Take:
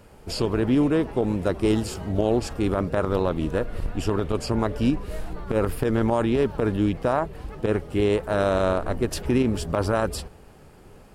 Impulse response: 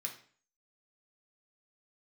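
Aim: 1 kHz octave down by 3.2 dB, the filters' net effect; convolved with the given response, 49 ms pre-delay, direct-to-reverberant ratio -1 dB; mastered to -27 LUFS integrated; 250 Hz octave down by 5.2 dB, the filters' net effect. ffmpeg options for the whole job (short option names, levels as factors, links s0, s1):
-filter_complex "[0:a]equalizer=f=250:t=o:g=-6.5,equalizer=f=1000:t=o:g=-4,asplit=2[s0][s1];[1:a]atrim=start_sample=2205,adelay=49[s2];[s1][s2]afir=irnorm=-1:irlink=0,volume=1.26[s3];[s0][s3]amix=inputs=2:normalize=0,volume=0.794"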